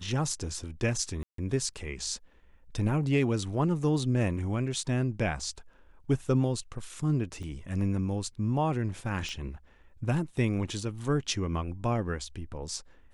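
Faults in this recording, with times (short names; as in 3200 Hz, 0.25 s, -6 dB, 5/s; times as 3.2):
1.23–1.38 gap 0.153 s
7.43 gap 4.1 ms
9.29 pop -25 dBFS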